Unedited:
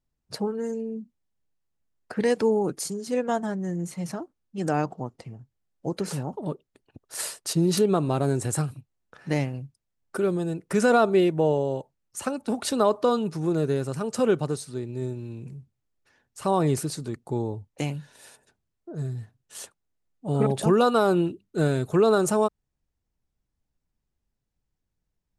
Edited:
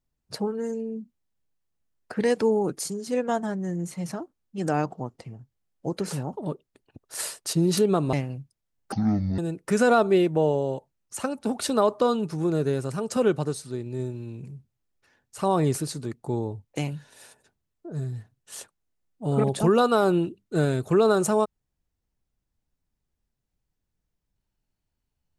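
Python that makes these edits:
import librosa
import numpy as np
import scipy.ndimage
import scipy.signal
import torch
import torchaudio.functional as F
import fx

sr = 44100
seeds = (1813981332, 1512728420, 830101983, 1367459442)

y = fx.edit(x, sr, fx.cut(start_s=8.13, length_s=1.24),
    fx.speed_span(start_s=10.16, length_s=0.25, speed=0.54), tone=tone)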